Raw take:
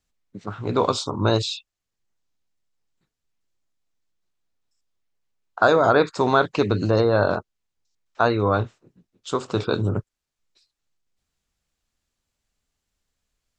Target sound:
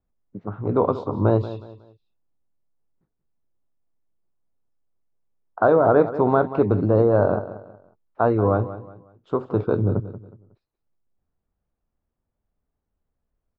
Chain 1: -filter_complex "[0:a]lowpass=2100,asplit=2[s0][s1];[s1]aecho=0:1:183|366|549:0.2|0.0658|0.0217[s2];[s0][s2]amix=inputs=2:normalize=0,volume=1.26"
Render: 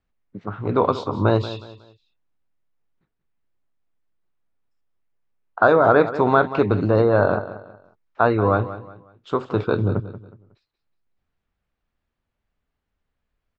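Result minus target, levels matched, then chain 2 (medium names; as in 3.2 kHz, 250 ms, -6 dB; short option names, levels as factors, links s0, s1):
2 kHz band +7.5 dB
-filter_complex "[0:a]lowpass=880,asplit=2[s0][s1];[s1]aecho=0:1:183|366|549:0.2|0.0658|0.0217[s2];[s0][s2]amix=inputs=2:normalize=0,volume=1.26"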